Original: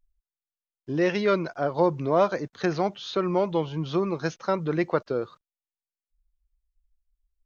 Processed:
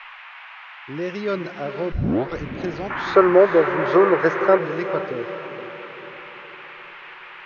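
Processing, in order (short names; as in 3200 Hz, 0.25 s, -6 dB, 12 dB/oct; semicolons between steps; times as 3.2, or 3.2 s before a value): rotary speaker horn 1.2 Hz; band noise 820–2700 Hz -40 dBFS; 1.92 tape start 0.47 s; 2.9–4.58 band shelf 820 Hz +15.5 dB 2.8 oct; diffused feedback echo 0.458 s, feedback 50%, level -10.5 dB; gain -1 dB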